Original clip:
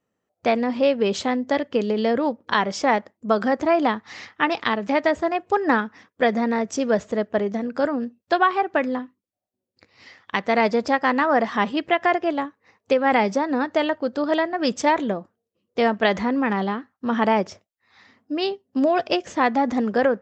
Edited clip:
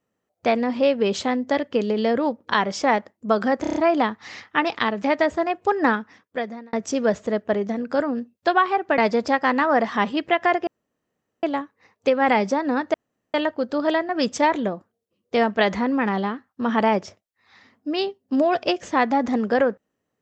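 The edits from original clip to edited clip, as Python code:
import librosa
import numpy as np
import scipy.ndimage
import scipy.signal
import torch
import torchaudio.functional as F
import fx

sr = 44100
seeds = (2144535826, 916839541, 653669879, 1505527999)

y = fx.edit(x, sr, fx.stutter(start_s=3.61, slice_s=0.03, count=6),
    fx.fade_out_span(start_s=5.78, length_s=0.8),
    fx.cut(start_s=8.83, length_s=1.75),
    fx.insert_room_tone(at_s=12.27, length_s=0.76),
    fx.insert_room_tone(at_s=13.78, length_s=0.4), tone=tone)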